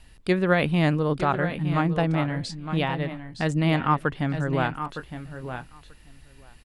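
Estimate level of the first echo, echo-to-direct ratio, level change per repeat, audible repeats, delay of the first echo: -10.0 dB, -9.5 dB, -19.5 dB, 2, 0.912 s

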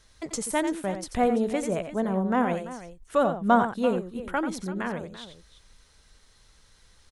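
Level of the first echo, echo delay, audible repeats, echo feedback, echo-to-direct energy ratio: -9.0 dB, 89 ms, 2, no steady repeat, -8.0 dB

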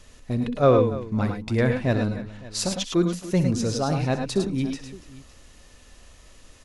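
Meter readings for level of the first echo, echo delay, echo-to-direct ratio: -13.0 dB, 63 ms, -4.5 dB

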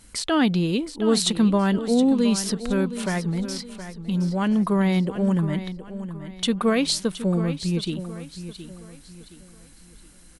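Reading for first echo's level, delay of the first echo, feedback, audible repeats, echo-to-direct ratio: -12.0 dB, 0.719 s, 36%, 3, -11.5 dB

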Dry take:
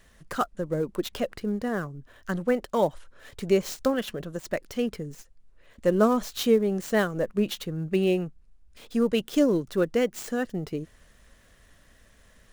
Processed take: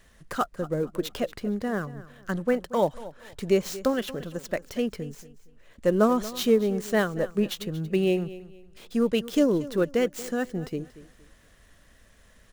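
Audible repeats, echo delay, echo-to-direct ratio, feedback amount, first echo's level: 2, 0.232 s, -16.5 dB, 29%, -17.0 dB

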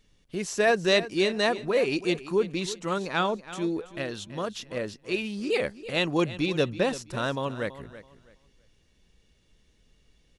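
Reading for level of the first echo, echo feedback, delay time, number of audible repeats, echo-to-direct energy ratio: -15.0 dB, 24%, 0.329 s, 2, -14.5 dB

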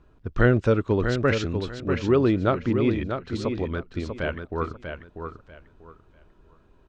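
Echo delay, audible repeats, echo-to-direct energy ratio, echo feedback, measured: 0.642 s, 3, -7.0 dB, 23%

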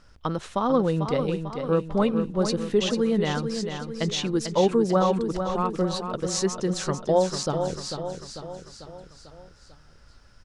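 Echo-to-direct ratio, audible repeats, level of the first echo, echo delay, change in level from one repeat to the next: -6.0 dB, 5, -7.5 dB, 0.445 s, -5.5 dB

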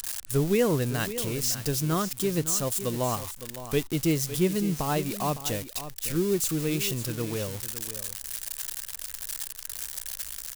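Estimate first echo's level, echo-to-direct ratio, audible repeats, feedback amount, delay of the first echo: -12.5 dB, -12.5 dB, 1, no steady repeat, 0.559 s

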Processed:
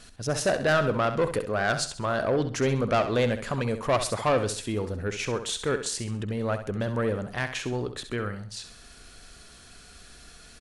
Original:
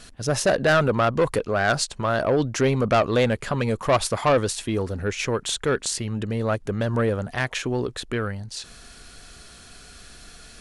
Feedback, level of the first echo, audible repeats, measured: 36%, -10.0 dB, 3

